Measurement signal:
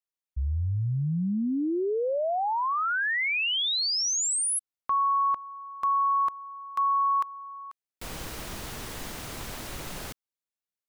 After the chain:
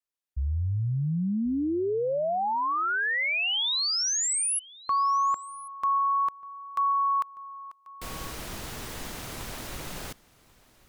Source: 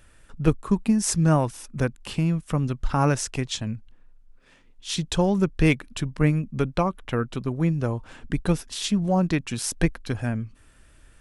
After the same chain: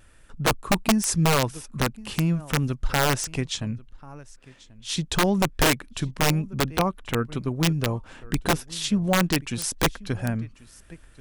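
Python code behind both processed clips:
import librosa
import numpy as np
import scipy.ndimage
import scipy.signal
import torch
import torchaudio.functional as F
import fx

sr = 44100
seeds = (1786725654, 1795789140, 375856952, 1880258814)

p1 = x + fx.echo_single(x, sr, ms=1087, db=-22.0, dry=0)
p2 = fx.vibrato(p1, sr, rate_hz=0.49, depth_cents=9.2)
y = (np.mod(10.0 ** (13.0 / 20.0) * p2 + 1.0, 2.0) - 1.0) / 10.0 ** (13.0 / 20.0)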